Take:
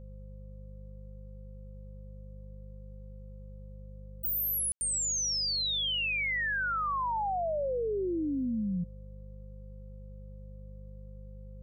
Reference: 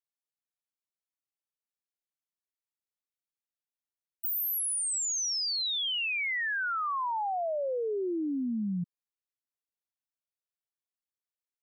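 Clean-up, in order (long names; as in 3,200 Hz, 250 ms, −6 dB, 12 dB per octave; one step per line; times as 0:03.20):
hum removal 50.3 Hz, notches 4
notch filter 520 Hz, Q 30
ambience match 0:04.72–0:04.81
downward expander −38 dBFS, range −21 dB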